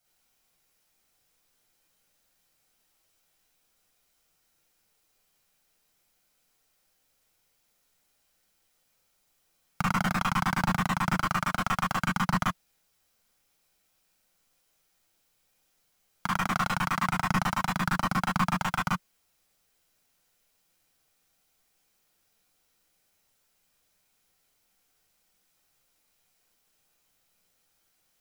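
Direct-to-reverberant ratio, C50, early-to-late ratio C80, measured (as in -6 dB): -5.0 dB, 1.0 dB, 25.0 dB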